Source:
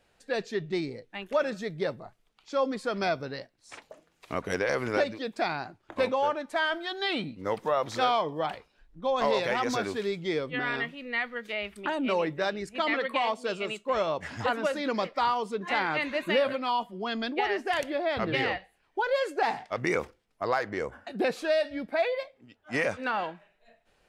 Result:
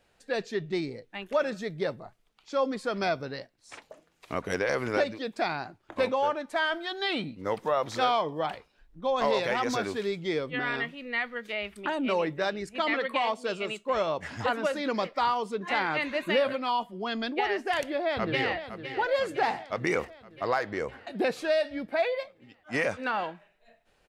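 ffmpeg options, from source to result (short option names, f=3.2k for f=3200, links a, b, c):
-filter_complex "[0:a]asplit=2[a][b];[b]afade=t=in:st=17.98:d=0.01,afade=t=out:st=18.55:d=0.01,aecho=0:1:510|1020|1530|2040|2550|3060|3570|4080:0.298538|0.19405|0.126132|0.0819861|0.0532909|0.0346391|0.0225154|0.014635[c];[a][c]amix=inputs=2:normalize=0"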